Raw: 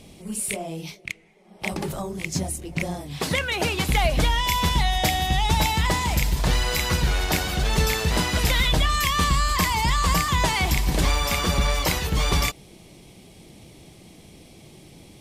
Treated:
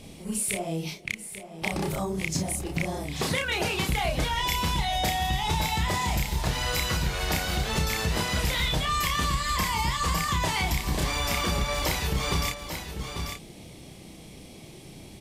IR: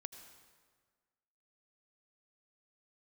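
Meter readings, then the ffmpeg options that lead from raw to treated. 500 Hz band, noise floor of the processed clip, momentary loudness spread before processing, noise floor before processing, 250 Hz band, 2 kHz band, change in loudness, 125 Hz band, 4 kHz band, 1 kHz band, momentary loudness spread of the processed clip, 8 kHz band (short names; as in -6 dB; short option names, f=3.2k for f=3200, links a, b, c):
-3.5 dB, -46 dBFS, 9 LU, -49 dBFS, -3.5 dB, -3.5 dB, -4.5 dB, -4.5 dB, -3.5 dB, -3.5 dB, 16 LU, -3.0 dB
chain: -filter_complex "[0:a]asplit=2[a][b];[b]adelay=31,volume=-3dB[c];[a][c]amix=inputs=2:normalize=0,aecho=1:1:840:0.211,acompressor=threshold=-25dB:ratio=3"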